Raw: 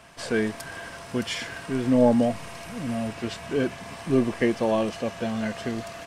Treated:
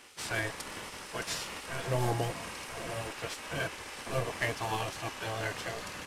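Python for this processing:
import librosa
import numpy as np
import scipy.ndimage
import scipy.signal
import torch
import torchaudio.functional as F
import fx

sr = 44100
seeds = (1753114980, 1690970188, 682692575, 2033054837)

y = fx.cvsd(x, sr, bps=64000)
y = fx.spec_gate(y, sr, threshold_db=-10, keep='weak')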